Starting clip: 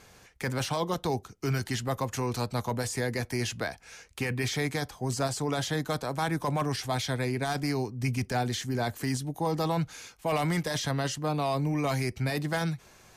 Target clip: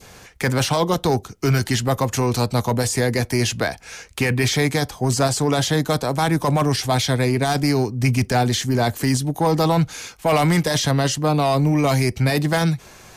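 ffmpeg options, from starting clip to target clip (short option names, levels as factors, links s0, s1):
-filter_complex "[0:a]adynamicequalizer=threshold=0.00631:dfrequency=1500:dqfactor=0.96:tfrequency=1500:tqfactor=0.96:attack=5:release=100:ratio=0.375:range=2:mode=cutabove:tftype=bell,asplit=2[s0][s1];[s1]aeval=exprs='0.0596*(abs(mod(val(0)/0.0596+3,4)-2)-1)':c=same,volume=0.316[s2];[s0][s2]amix=inputs=2:normalize=0,volume=2.82"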